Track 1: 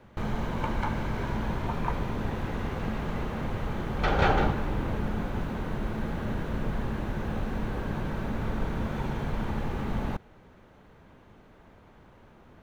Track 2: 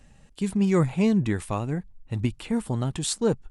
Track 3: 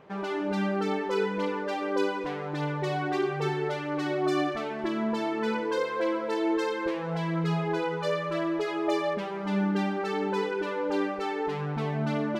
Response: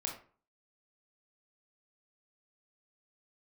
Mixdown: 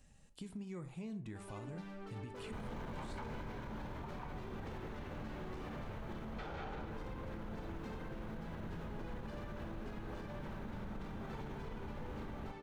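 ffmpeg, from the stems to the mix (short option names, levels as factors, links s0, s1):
-filter_complex "[0:a]adelay=2350,volume=1.06,asplit=2[s0][s1];[s1]volume=0.106[s2];[1:a]acrossover=split=3500[s3][s4];[s4]acompressor=threshold=0.00447:ratio=4:attack=1:release=60[s5];[s3][s5]amix=inputs=2:normalize=0,bass=f=250:g=1,treble=f=4000:g=6,acompressor=threshold=0.0316:ratio=6,volume=0.188,asplit=3[s6][s7][s8];[s7]volume=0.501[s9];[2:a]asoftclip=type=hard:threshold=0.0473,adelay=1250,volume=0.106[s10];[s8]apad=whole_len=660488[s11];[s0][s11]sidechaingate=range=0.398:threshold=0.00112:ratio=16:detection=peak[s12];[s12][s6]amix=inputs=2:normalize=0,asoftclip=type=tanh:threshold=0.0473,acompressor=threshold=0.00708:ratio=6,volume=1[s13];[3:a]atrim=start_sample=2205[s14];[s2][s9]amix=inputs=2:normalize=0[s15];[s15][s14]afir=irnorm=-1:irlink=0[s16];[s10][s13][s16]amix=inputs=3:normalize=0,alimiter=level_in=4.22:limit=0.0631:level=0:latency=1:release=67,volume=0.237"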